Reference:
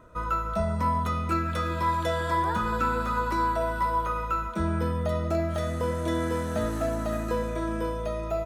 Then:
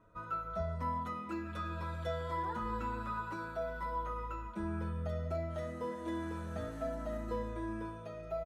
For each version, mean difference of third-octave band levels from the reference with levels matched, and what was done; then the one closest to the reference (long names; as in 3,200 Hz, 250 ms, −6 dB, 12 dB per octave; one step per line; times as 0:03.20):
4.0 dB: high-shelf EQ 4,900 Hz −9 dB
barber-pole flanger 6.8 ms −0.64 Hz
level −8 dB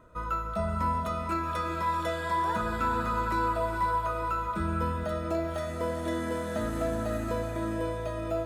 2.5 dB: notch filter 5,800 Hz, Q 13
feedback delay with all-pass diffusion 456 ms, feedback 43%, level −5.5 dB
level −3.5 dB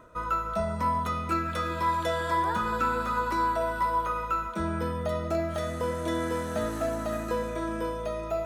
1.5 dB: low-shelf EQ 190 Hz −7 dB
reversed playback
upward compression, threshold −33 dBFS
reversed playback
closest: third